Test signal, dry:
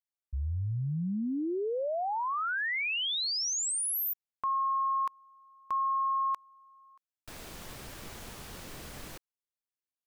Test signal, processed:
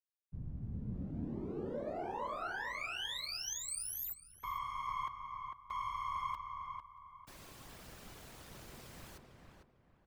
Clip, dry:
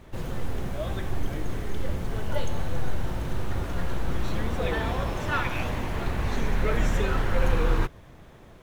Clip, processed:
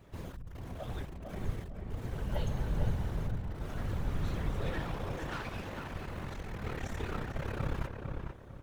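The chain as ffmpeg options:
-filter_complex "[0:a]aeval=exprs='clip(val(0),-1,0.0237)':c=same,afftfilt=real='hypot(re,im)*cos(2*PI*random(0))':imag='hypot(re,im)*sin(2*PI*random(1))':win_size=512:overlap=0.75,asplit=2[a][b];[b]adelay=450,lowpass=f=1.8k:p=1,volume=-4dB,asplit=2[c][d];[d]adelay=450,lowpass=f=1.8k:p=1,volume=0.33,asplit=2[e][f];[f]adelay=450,lowpass=f=1.8k:p=1,volume=0.33,asplit=2[g][h];[h]adelay=450,lowpass=f=1.8k:p=1,volume=0.33[i];[a][c][e][g][i]amix=inputs=5:normalize=0,volume=-3dB"

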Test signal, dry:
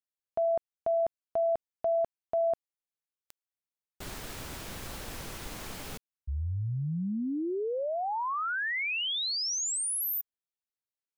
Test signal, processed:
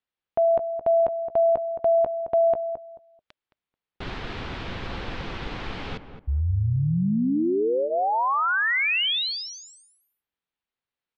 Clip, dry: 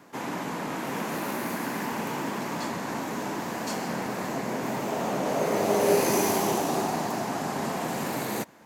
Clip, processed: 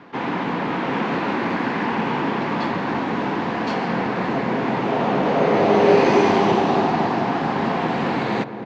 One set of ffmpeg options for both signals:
-filter_complex "[0:a]lowpass=f=3.8k:w=0.5412,lowpass=f=3.8k:w=1.3066,bandreject=f=610:w=12,asplit=2[a][b];[b]adelay=218,lowpass=f=1.1k:p=1,volume=-8.5dB,asplit=2[c][d];[d]adelay=218,lowpass=f=1.1k:p=1,volume=0.24,asplit=2[e][f];[f]adelay=218,lowpass=f=1.1k:p=1,volume=0.24[g];[c][e][g]amix=inputs=3:normalize=0[h];[a][h]amix=inputs=2:normalize=0,volume=8.5dB"

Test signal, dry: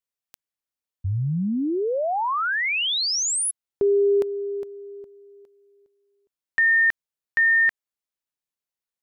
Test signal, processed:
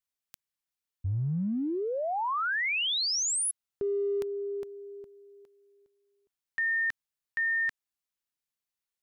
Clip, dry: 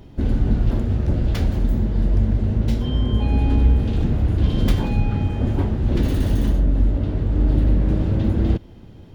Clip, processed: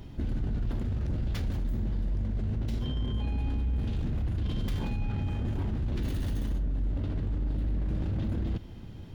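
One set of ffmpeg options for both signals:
-af "equalizer=f=480:w=0.72:g=-5.5,areverse,acompressor=threshold=-27dB:ratio=6:attack=0.33:release=47:knee=6:detection=peak,areverse"

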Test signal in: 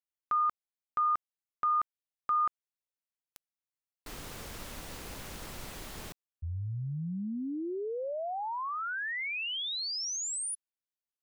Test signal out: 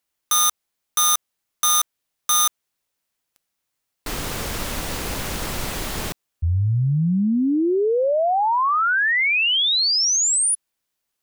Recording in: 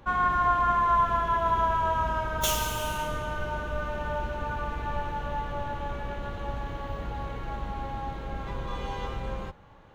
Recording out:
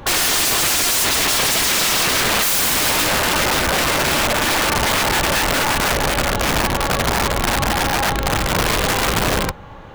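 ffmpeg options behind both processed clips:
-af "apsyclip=16dB,aeval=exprs='(mod(4.22*val(0)+1,2)-1)/4.22':c=same"

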